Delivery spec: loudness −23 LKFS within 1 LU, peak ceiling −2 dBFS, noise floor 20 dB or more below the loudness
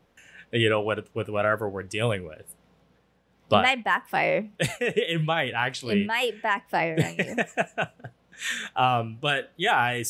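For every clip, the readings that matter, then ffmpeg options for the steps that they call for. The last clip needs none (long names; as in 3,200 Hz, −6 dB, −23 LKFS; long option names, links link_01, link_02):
integrated loudness −25.5 LKFS; sample peak −5.0 dBFS; target loudness −23.0 LKFS
→ -af "volume=2.5dB"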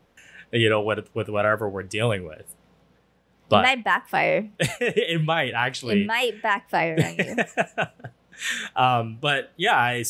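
integrated loudness −23.0 LKFS; sample peak −2.5 dBFS; background noise floor −62 dBFS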